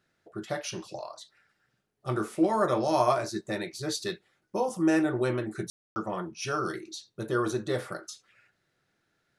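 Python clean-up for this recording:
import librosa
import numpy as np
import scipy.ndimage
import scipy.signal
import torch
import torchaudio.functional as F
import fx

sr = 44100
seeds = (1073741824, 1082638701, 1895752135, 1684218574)

y = fx.fix_ambience(x, sr, seeds[0], print_start_s=1.53, print_end_s=2.03, start_s=5.7, end_s=5.96)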